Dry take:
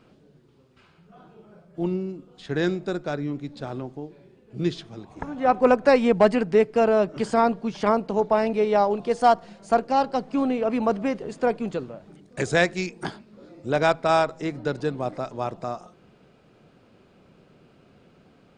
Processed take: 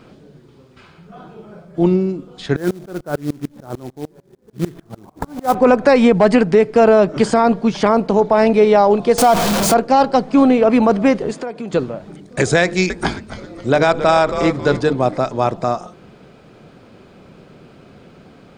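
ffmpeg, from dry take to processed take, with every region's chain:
ffmpeg -i in.wav -filter_complex "[0:a]asettb=1/sr,asplit=3[link_01][link_02][link_03];[link_01]atrim=end=2.564[link_04];[link_02]atrim=start=2.56:end=5.55,asetpts=PTS-STARTPTS,afade=type=in:duration=0.004:curve=qsin,afade=type=out:start_time=2.986:duration=0.004:curve=qsin,lowpass=frequency=1600:width=0.5412,lowpass=frequency=1600:width=1.3066,acrusher=bits=4:mode=log:mix=0:aa=0.000001,aeval=exprs='val(0)*pow(10,-27*if(lt(mod(-6.7*n/s,1),2*abs(-6.7)/1000),1-mod(-6.7*n/s,1)/(2*abs(-6.7)/1000),(mod(-6.7*n/s,1)-2*abs(-6.7)/1000)/(1-2*abs(-6.7)/1000))/20)':channel_layout=same[link_05];[link_03]atrim=start=5.546[link_06];[link_04][link_05]acrossfade=duration=0.004:curve1=hsin:curve2=qsin[link_07];[link_07][link_06]acrossfade=duration=0.004:curve1=qsin:curve2=hsin,asettb=1/sr,asplit=3[link_08][link_09][link_10];[link_08]atrim=end=9.184[link_11];[link_09]atrim=start=9.18:end=9.74,asetpts=PTS-STARTPTS,afade=type=in:duration=0.004:curve=qsin,afade=type=out:start_time=0.556:duration=0.004:curve=qsin,aeval=exprs='val(0)+0.5*0.0708*sgn(val(0))':channel_layout=same,equalizer=frequency=1900:width_type=o:width=0.34:gain=-5.5[link_12];[link_10]atrim=start=9.736[link_13];[link_11][link_12]acrossfade=duration=0.004:curve1=hsin:curve2=qsin[link_14];[link_14][link_13]acrossfade=duration=0.004:curve1=qsin:curve2=hsin,asettb=1/sr,asplit=3[link_15][link_16][link_17];[link_15]atrim=end=11.314[link_18];[link_16]atrim=start=11.31:end=11.73,asetpts=PTS-STARTPTS,afade=type=in:duration=0.004:curve=qsin,afade=type=out:start_time=0.416:duration=0.004:curve=qsin,highpass=frequency=150:poles=1,acompressor=threshold=-36dB:ratio=5:attack=3.2:release=140:knee=1:detection=peak[link_19];[link_17]atrim=start=11.726[link_20];[link_18][link_19]acrossfade=duration=0.004:curve1=hsin:curve2=qsin[link_21];[link_21][link_20]acrossfade=duration=0.004:curve1=qsin:curve2=hsin,asettb=1/sr,asplit=3[link_22][link_23][link_24];[link_22]atrim=end=12.634[link_25];[link_23]atrim=start=12.63:end=14.93,asetpts=PTS-STARTPTS,afade=type=in:duration=0.004:curve=qsin,afade=type=out:start_time=2.296:duration=0.004:curve=qsin,bandreject=frequency=50:width_type=h:width=6,bandreject=frequency=100:width_type=h:width=6,bandreject=frequency=150:width_type=h:width=6,bandreject=frequency=200:width_type=h:width=6,bandreject=frequency=250:width_type=h:width=6,bandreject=frequency=300:width_type=h:width=6,bandreject=frequency=350:width_type=h:width=6,bandreject=frequency=400:width_type=h:width=6,bandreject=frequency=450:width_type=h:width=6,bandreject=frequency=500:width_type=h:width=6,asplit=5[link_26][link_27][link_28][link_29][link_30];[link_27]adelay=268,afreqshift=-130,volume=-13.5dB[link_31];[link_28]adelay=536,afreqshift=-260,volume=-21.7dB[link_32];[link_29]adelay=804,afreqshift=-390,volume=-29.9dB[link_33];[link_30]adelay=1072,afreqshift=-520,volume=-38dB[link_34];[link_26][link_31][link_32][link_33][link_34]amix=inputs=5:normalize=0,atrim=end_sample=101430[link_35];[link_24]atrim=start=14.926[link_36];[link_25][link_35]acrossfade=duration=0.004:curve1=hsin:curve2=qsin[link_37];[link_37][link_36]acrossfade=duration=0.004:curve1=qsin:curve2=hsin,bandreject=frequency=2800:width=23,alimiter=level_in=14dB:limit=-1dB:release=50:level=0:latency=1,volume=-2dB" out.wav

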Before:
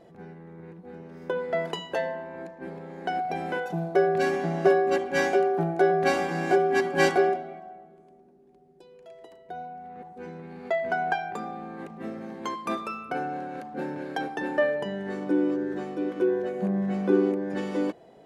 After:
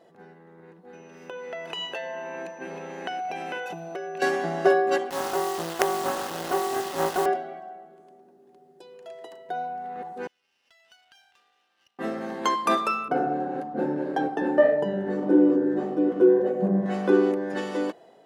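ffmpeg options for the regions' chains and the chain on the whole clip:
ffmpeg -i in.wav -filter_complex "[0:a]asettb=1/sr,asplit=3[link_01][link_02][link_03];[link_01]atrim=end=0.934[link_04];[link_02]atrim=start=0.93:end=4.22,asetpts=PTS-STARTPTS,afade=type=in:duration=0.004:curve=qsin,afade=type=out:start_time=3.286:duration=0.004:curve=qsin,acompressor=threshold=-34dB:ratio=6:attack=3.2:release=140:knee=1:detection=peak,aeval=exprs='val(0)+0.000501*sin(2*PI*6000*n/s)':channel_layout=same,equalizer=frequency=2600:width_type=o:width=0.38:gain=13.5[link_05];[link_03]atrim=start=4.216[link_06];[link_04][link_05]acrossfade=duration=0.004:curve1=hsin:curve2=qsin[link_07];[link_07][link_06]acrossfade=duration=0.004:curve1=qsin:curve2=hsin,asettb=1/sr,asplit=3[link_08][link_09][link_10];[link_08]atrim=end=5.104[link_11];[link_09]atrim=start=5.1:end=7.26,asetpts=PTS-STARTPTS,afade=type=in:duration=0.004:curve=qsin,afade=type=out:start_time=2.156:duration=0.004:curve=qsin,lowpass=frequency=1100:width=0.5412,lowpass=frequency=1100:width=1.3066,acrusher=bits=3:dc=4:mix=0:aa=0.000001[link_12];[link_10]atrim=start=7.256[link_13];[link_11][link_12]acrossfade=duration=0.004:curve1=hsin:curve2=qsin[link_14];[link_14][link_13]acrossfade=duration=0.004:curve1=qsin:curve2=hsin,asettb=1/sr,asplit=3[link_15][link_16][link_17];[link_15]atrim=end=10.274[link_18];[link_16]atrim=start=10.27:end=11.99,asetpts=PTS-STARTPTS,afade=type=in:duration=0.004:curve=qsin,afade=type=out:start_time=1.716:duration=0.004:curve=qsin,acompressor=threshold=-28dB:ratio=5:attack=3.2:release=140:knee=1:detection=peak,bandpass=frequency=2900:width_type=q:width=20,aeval=exprs='max(val(0),0)':channel_layout=same[link_19];[link_17]atrim=start=11.986[link_20];[link_18][link_19]acrossfade=duration=0.004:curve1=hsin:curve2=qsin[link_21];[link_21][link_20]acrossfade=duration=0.004:curve1=qsin:curve2=hsin,asettb=1/sr,asplit=3[link_22][link_23][link_24];[link_22]atrim=end=13.084[link_25];[link_23]atrim=start=13.08:end=16.86,asetpts=PTS-STARTPTS,afade=type=in:duration=0.004:curve=qsin,afade=type=out:start_time=3.776:duration=0.004:curve=qsin,tiltshelf=frequency=870:gain=9.5,flanger=delay=6.3:depth=7.8:regen=-43:speed=1.7:shape=sinusoidal[link_26];[link_24]atrim=start=16.856[link_27];[link_25][link_26]acrossfade=duration=0.004:curve1=hsin:curve2=qsin[link_28];[link_28][link_27]acrossfade=duration=0.004:curve1=qsin:curve2=hsin,bandreject=frequency=2300:width=9,dynaudnorm=framelen=860:gausssize=5:maxgain=10.5dB,highpass=frequency=490:poles=1" out.wav

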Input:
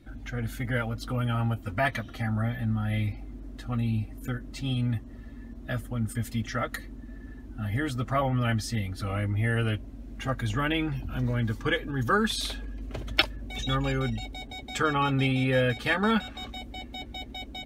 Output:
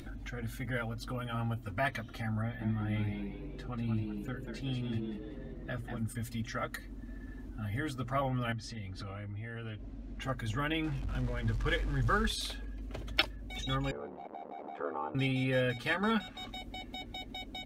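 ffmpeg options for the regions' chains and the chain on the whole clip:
ffmpeg -i in.wav -filter_complex "[0:a]asettb=1/sr,asplit=3[link_01][link_02][link_03];[link_01]atrim=end=2.424[link_04];[link_02]atrim=start=2.42:end=6.03,asetpts=PTS-STARTPTS,afade=type=in:duration=0.004:curve=qsin,afade=type=out:start_time=3.606:duration=0.004:curve=qsin,highshelf=frequency=6100:gain=-11,asplit=5[link_05][link_06][link_07][link_08][link_09];[link_06]adelay=189,afreqshift=95,volume=-6.5dB[link_10];[link_07]adelay=378,afreqshift=190,volume=-14.9dB[link_11];[link_08]adelay=567,afreqshift=285,volume=-23.3dB[link_12];[link_09]adelay=756,afreqshift=380,volume=-31.7dB[link_13];[link_05][link_10][link_11][link_12][link_13]amix=inputs=5:normalize=0,atrim=end_sample=159201[link_14];[link_03]atrim=start=6.026[link_15];[link_04][link_14]acrossfade=duration=0.004:curve1=hsin:curve2=qsin[link_16];[link_16][link_15]acrossfade=duration=0.004:curve1=qsin:curve2=hsin,asettb=1/sr,asplit=3[link_17][link_18][link_19];[link_17]atrim=end=8.524[link_20];[link_18]atrim=start=8.52:end=10.22,asetpts=PTS-STARTPTS,afade=type=in:duration=0.004:curve=qsin,afade=type=out:start_time=1.696:duration=0.004:curve=qsin,lowpass=5600,acompressor=threshold=-33dB:ratio=6:attack=3.2:release=140:knee=1:detection=peak[link_21];[link_19]atrim=start=10.216[link_22];[link_20][link_21]acrossfade=duration=0.004:curve1=hsin:curve2=qsin[link_23];[link_23][link_22]acrossfade=duration=0.004:curve1=qsin:curve2=hsin,asettb=1/sr,asplit=3[link_24][link_25][link_26];[link_24]atrim=end=10.844[link_27];[link_25]atrim=start=10.84:end=12.29,asetpts=PTS-STARTPTS,afade=type=in:duration=0.004:curve=qsin,afade=type=out:start_time=1.446:duration=0.004:curve=qsin,aeval=exprs='val(0)+0.5*0.015*sgn(val(0))':channel_layout=same,adynamicsmooth=sensitivity=5:basefreq=8000,asubboost=boost=11:cutoff=96[link_28];[link_26]atrim=start=12.286[link_29];[link_27][link_28]acrossfade=duration=0.004:curve1=hsin:curve2=qsin[link_30];[link_30][link_29]acrossfade=duration=0.004:curve1=qsin:curve2=hsin,asettb=1/sr,asplit=3[link_31][link_32][link_33];[link_31]atrim=end=13.914[link_34];[link_32]atrim=start=13.91:end=15.15,asetpts=PTS-STARTPTS,afade=type=in:duration=0.004:curve=qsin,afade=type=out:start_time=1.236:duration=0.004:curve=qsin,aeval=exprs='val(0)+0.5*0.0335*sgn(val(0))':channel_layout=same,asuperpass=centerf=580:order=4:qfactor=0.93,aeval=exprs='val(0)*sin(2*PI*37*n/s)':channel_layout=same[link_35];[link_33]atrim=start=15.146[link_36];[link_34][link_35]acrossfade=duration=0.004:curve1=hsin:curve2=qsin[link_37];[link_37][link_36]acrossfade=duration=0.004:curve1=qsin:curve2=hsin,bandreject=frequency=60:width_type=h:width=6,bandreject=frequency=120:width_type=h:width=6,bandreject=frequency=180:width_type=h:width=6,bandreject=frequency=240:width_type=h:width=6,bandreject=frequency=300:width_type=h:width=6,bandreject=frequency=360:width_type=h:width=6,bandreject=frequency=420:width_type=h:width=6,acompressor=mode=upward:threshold=-31dB:ratio=2.5,volume=-6dB" out.wav

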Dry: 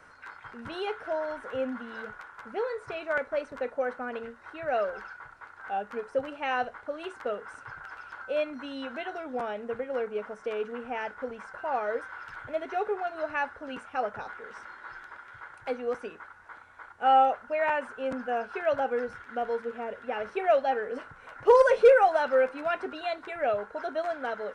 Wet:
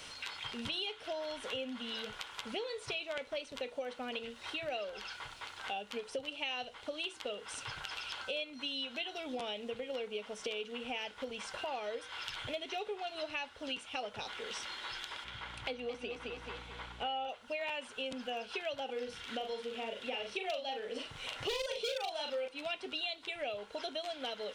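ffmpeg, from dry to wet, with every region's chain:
ffmpeg -i in.wav -filter_complex "[0:a]asettb=1/sr,asplit=3[link_01][link_02][link_03];[link_01]atrim=end=15.244[link_04];[link_02]atrim=start=15.24:end=17.29,asetpts=PTS-STARTPTS,afade=type=in:duration=0.004:curve=qsin,afade=type=out:start_time=2.046:duration=0.004:curve=qsin,highshelf=frequency=4700:gain=-11.5,aeval=exprs='val(0)+0.001*(sin(2*PI*60*n/s)+sin(2*PI*2*60*n/s)/2+sin(2*PI*3*60*n/s)/3+sin(2*PI*4*60*n/s)/4+sin(2*PI*5*60*n/s)/5)':channel_layout=same,aecho=1:1:217|434|651|868:0.447|0.17|0.0645|0.0245,atrim=end_sample=90405[link_05];[link_03]atrim=start=17.286[link_06];[link_04][link_05]acrossfade=duration=0.004:curve1=hsin:curve2=qsin[link_07];[link_07][link_06]acrossfade=duration=0.004:curve1=qsin:curve2=hsin,asettb=1/sr,asplit=3[link_08][link_09][link_10];[link_08]atrim=end=18.854[link_11];[link_09]atrim=start=18.85:end=22.48,asetpts=PTS-STARTPTS,afade=type=in:duration=0.004:curve=qsin,afade=type=out:start_time=3.626:duration=0.004:curve=qsin,aeval=exprs='0.2*(abs(mod(val(0)/0.2+3,4)-2)-1)':channel_layout=same,asplit=2[link_12][link_13];[link_13]adelay=40,volume=-4.5dB[link_14];[link_12][link_14]amix=inputs=2:normalize=0,atrim=end_sample=160083[link_15];[link_10]atrim=start=22.476[link_16];[link_11][link_15]acrossfade=duration=0.004:curve1=hsin:curve2=qsin[link_17];[link_17][link_16]acrossfade=duration=0.004:curve1=qsin:curve2=hsin,highshelf=frequency=2200:width_type=q:width=3:gain=12.5,acompressor=threshold=-42dB:ratio=5,bandreject=frequency=161.5:width_type=h:width=4,bandreject=frequency=323:width_type=h:width=4,bandreject=frequency=484.5:width_type=h:width=4,volume=4dB" out.wav

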